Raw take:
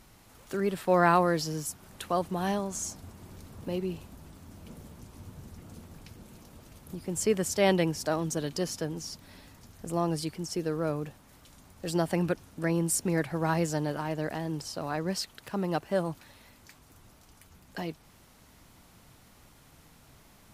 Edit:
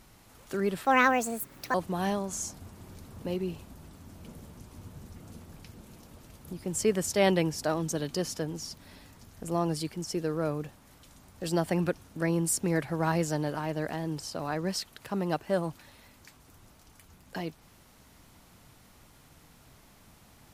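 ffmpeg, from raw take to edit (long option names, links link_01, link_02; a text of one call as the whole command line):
ffmpeg -i in.wav -filter_complex "[0:a]asplit=3[link_01][link_02][link_03];[link_01]atrim=end=0.854[link_04];[link_02]atrim=start=0.85:end=2.16,asetpts=PTS-STARTPTS,asetrate=64827,aresample=44100[link_05];[link_03]atrim=start=2.156[link_06];[link_04][link_05]acrossfade=duration=0.004:curve1=hsin:curve2=hsin[link_07];[link_07][link_06]acrossfade=duration=0.004:curve1=hsin:curve2=hsin" out.wav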